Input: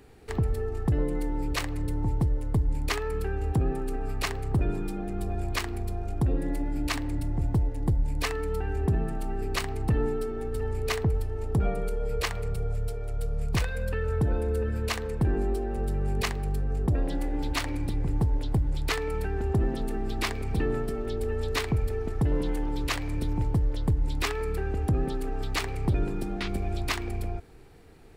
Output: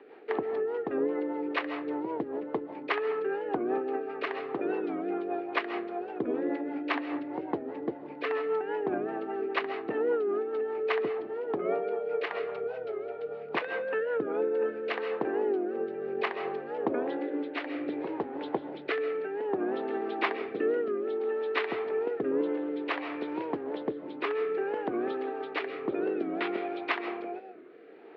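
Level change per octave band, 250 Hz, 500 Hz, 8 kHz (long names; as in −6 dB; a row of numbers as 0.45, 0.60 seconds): −1.5 dB, +4.0 dB, below −30 dB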